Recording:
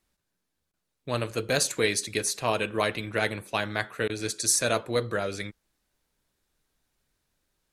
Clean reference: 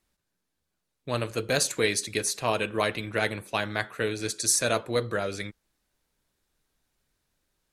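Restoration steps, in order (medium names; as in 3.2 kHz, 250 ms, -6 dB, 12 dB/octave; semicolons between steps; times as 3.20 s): interpolate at 0.72/4.08 s, 14 ms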